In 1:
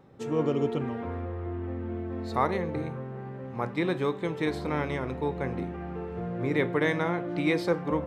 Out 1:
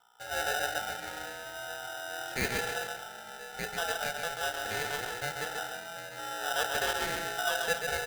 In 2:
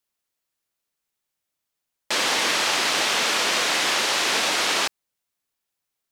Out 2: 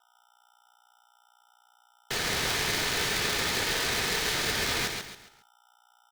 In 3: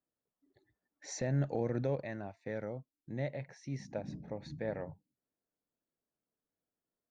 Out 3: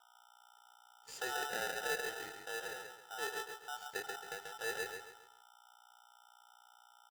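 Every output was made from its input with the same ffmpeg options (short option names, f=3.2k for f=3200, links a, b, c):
-filter_complex "[0:a]bandreject=f=60:t=h:w=6,bandreject=f=120:t=h:w=6,agate=range=-14dB:threshold=-50dB:ratio=16:detection=peak,acrossover=split=4800[a][b];[b]acompressor=threshold=-38dB:ratio=4:attack=1:release=60[c];[a][c]amix=inputs=2:normalize=0,equalizer=f=580:w=7.3:g=4.5,aeval=exprs='val(0)+0.00178*(sin(2*PI*60*n/s)+sin(2*PI*2*60*n/s)/2+sin(2*PI*3*60*n/s)/3+sin(2*PI*4*60*n/s)/4+sin(2*PI*5*60*n/s)/5)':c=same,equalizer=f=1.5k:w=6.2:g=-14.5,flanger=delay=9:depth=2.6:regen=-76:speed=1.2:shape=triangular,afreqshift=92,aecho=1:1:3:0.47,aecho=1:1:136|272|408|544:0.562|0.202|0.0729|0.0262,aeval=exprs='val(0)*sgn(sin(2*PI*1100*n/s))':c=same,volume=-2.5dB"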